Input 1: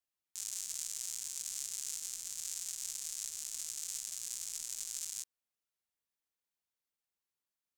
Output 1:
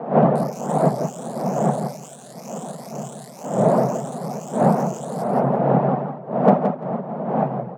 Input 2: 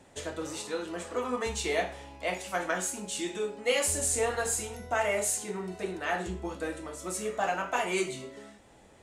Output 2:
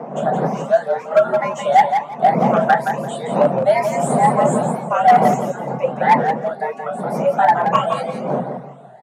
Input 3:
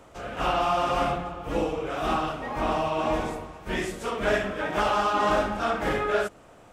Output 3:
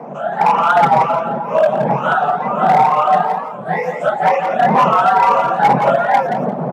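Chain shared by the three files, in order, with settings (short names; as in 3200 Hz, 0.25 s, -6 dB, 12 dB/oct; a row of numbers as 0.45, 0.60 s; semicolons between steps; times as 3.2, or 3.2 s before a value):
moving spectral ripple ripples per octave 0.76, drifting +2.1 Hz, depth 18 dB; wind noise 220 Hz -26 dBFS; reverb removal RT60 0.63 s; EQ curve 110 Hz 0 dB, 170 Hz -13 dB, 560 Hz +14 dB, 4200 Hz -10 dB, 6500 Hz -12 dB; overloaded stage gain 8 dB; frequency shift +130 Hz; on a send: feedback echo 0.171 s, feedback 19%, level -7 dB; on the sum: record warp 45 rpm, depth 100 cents; normalise peaks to -1.5 dBFS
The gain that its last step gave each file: +4.0, +2.5, +1.5 dB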